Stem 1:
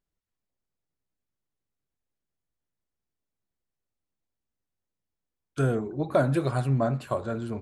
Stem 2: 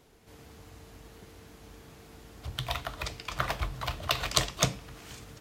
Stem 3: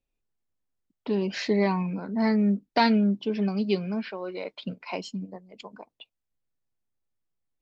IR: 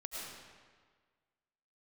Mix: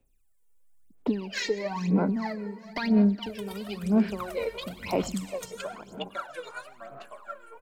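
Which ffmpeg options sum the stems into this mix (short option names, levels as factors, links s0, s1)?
-filter_complex "[0:a]highpass=1000,afwtdn=0.00224,asplit=2[s0][s1];[s1]adelay=4.2,afreqshift=-1.7[s2];[s0][s2]amix=inputs=2:normalize=1,volume=0.596,asplit=2[s3][s4];[s4]volume=0.211[s5];[1:a]agate=range=0.141:threshold=0.00794:ratio=16:detection=peak,alimiter=limit=0.224:level=0:latency=1:release=428,adelay=800,volume=0.112,asplit=2[s6][s7];[s7]volume=0.668[s8];[2:a]acompressor=threshold=0.0251:ratio=6,volume=1.06,asplit=3[s9][s10][s11];[s10]volume=0.251[s12];[s11]volume=0.2[s13];[3:a]atrim=start_sample=2205[s14];[s5][s8][s12]amix=inputs=3:normalize=0[s15];[s15][s14]afir=irnorm=-1:irlink=0[s16];[s13]aecho=0:1:417|834|1251|1668|2085|2502:1|0.41|0.168|0.0689|0.0283|0.0116[s17];[s3][s6][s9][s16][s17]amix=inputs=5:normalize=0,highshelf=f=6600:t=q:w=1.5:g=8,acrossover=split=140[s18][s19];[s18]acompressor=threshold=0.00251:ratio=6[s20];[s20][s19]amix=inputs=2:normalize=0,aphaser=in_gain=1:out_gain=1:delay=2.2:decay=0.79:speed=1:type=sinusoidal"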